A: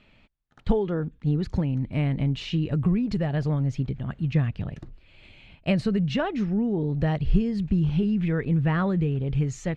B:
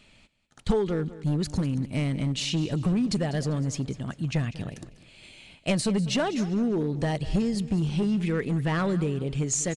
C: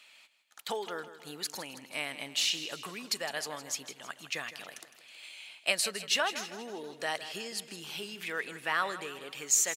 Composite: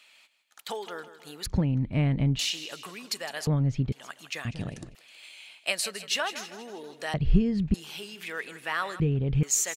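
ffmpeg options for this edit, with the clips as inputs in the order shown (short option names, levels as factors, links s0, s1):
-filter_complex "[0:a]asplit=4[s0][s1][s2][s3];[2:a]asplit=6[s4][s5][s6][s7][s8][s9];[s4]atrim=end=1.462[s10];[s0]atrim=start=1.458:end=2.392[s11];[s5]atrim=start=2.388:end=3.472[s12];[s1]atrim=start=3.468:end=3.922[s13];[s6]atrim=start=3.918:end=4.452[s14];[1:a]atrim=start=4.448:end=4.952[s15];[s7]atrim=start=4.948:end=7.142[s16];[s2]atrim=start=7.138:end=7.742[s17];[s8]atrim=start=7.738:end=9.002[s18];[s3]atrim=start=8.998:end=9.432[s19];[s9]atrim=start=9.428[s20];[s10][s11]acrossfade=d=0.004:c1=hsin:c2=hsin[s21];[s21][s12]acrossfade=d=0.004:c1=hsin:c2=hsin[s22];[s22][s13]acrossfade=d=0.004:c1=hsin:c2=hsin[s23];[s23][s14]acrossfade=d=0.004:c1=hsin:c2=hsin[s24];[s24][s15]acrossfade=d=0.004:c1=hsin:c2=hsin[s25];[s25][s16]acrossfade=d=0.004:c1=hsin:c2=hsin[s26];[s26][s17]acrossfade=d=0.004:c1=hsin:c2=hsin[s27];[s27][s18]acrossfade=d=0.004:c1=hsin:c2=hsin[s28];[s28][s19]acrossfade=d=0.004:c1=hsin:c2=hsin[s29];[s29][s20]acrossfade=d=0.004:c1=hsin:c2=hsin"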